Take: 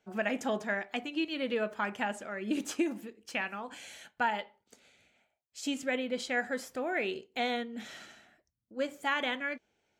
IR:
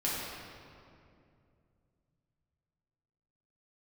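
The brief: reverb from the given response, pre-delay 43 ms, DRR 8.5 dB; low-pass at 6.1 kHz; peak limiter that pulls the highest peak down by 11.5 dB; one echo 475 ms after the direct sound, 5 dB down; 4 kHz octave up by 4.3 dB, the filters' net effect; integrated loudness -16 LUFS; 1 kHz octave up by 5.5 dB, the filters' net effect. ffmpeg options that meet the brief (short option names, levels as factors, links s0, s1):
-filter_complex "[0:a]lowpass=6100,equalizer=f=1000:t=o:g=7,equalizer=f=4000:t=o:g=6,alimiter=limit=0.0631:level=0:latency=1,aecho=1:1:475:0.562,asplit=2[s0][s1];[1:a]atrim=start_sample=2205,adelay=43[s2];[s1][s2]afir=irnorm=-1:irlink=0,volume=0.168[s3];[s0][s3]amix=inputs=2:normalize=0,volume=7.94"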